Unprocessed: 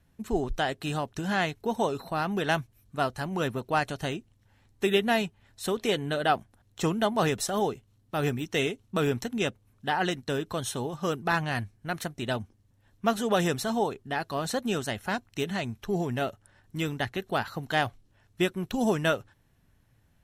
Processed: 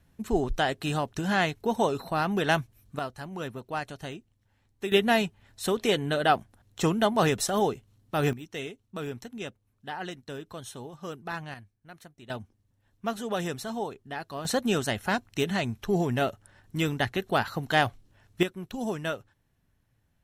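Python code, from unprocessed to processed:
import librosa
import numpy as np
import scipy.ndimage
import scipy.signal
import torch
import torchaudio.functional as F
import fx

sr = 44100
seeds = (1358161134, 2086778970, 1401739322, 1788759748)

y = fx.gain(x, sr, db=fx.steps((0.0, 2.0), (2.99, -6.5), (4.92, 2.0), (8.33, -9.0), (11.54, -16.0), (12.3, -5.5), (14.45, 3.0), (18.43, -6.0)))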